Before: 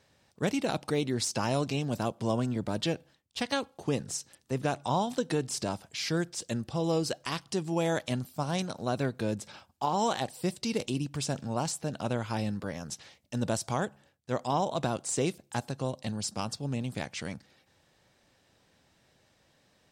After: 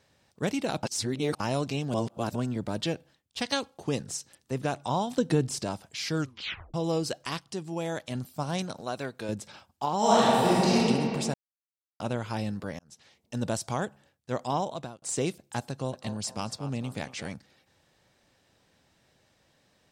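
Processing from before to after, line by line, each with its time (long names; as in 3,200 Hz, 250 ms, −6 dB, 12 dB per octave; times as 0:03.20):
0:00.83–0:01.40: reverse
0:01.94–0:02.35: reverse
0:03.40–0:04.02: dynamic equaliser 5,400 Hz, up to +7 dB, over −48 dBFS, Q 0.89
0:05.17–0:05.59: low-shelf EQ 330 Hz +9.5 dB
0:06.14: tape stop 0.60 s
0:07.39–0:08.15: clip gain −4 dB
0:08.81–0:09.29: low-shelf EQ 310 Hz −11.5 dB
0:09.98–0:10.76: thrown reverb, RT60 2.8 s, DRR −9.5 dB
0:11.34–0:12.00: silence
0:12.79–0:13.38: fade in
0:14.56–0:15.02: fade out linear
0:15.69–0:17.33: feedback echo with a band-pass in the loop 227 ms, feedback 44%, level −8 dB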